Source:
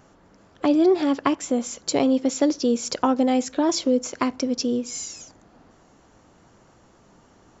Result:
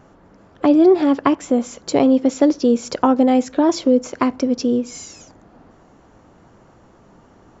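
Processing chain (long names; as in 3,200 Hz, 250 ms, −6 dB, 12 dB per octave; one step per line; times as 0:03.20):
high-shelf EQ 2,900 Hz −11 dB
level +6 dB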